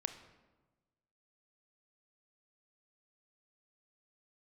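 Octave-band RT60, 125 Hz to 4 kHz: 1.6, 1.4, 1.3, 1.2, 0.90, 0.75 seconds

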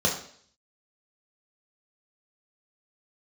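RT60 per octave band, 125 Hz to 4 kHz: 0.55, 0.60, 0.60, 0.55, 0.55, 0.65 seconds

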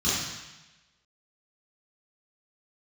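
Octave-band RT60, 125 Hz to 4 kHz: 1.1, 1.0, 0.95, 1.1, 1.2, 1.1 seconds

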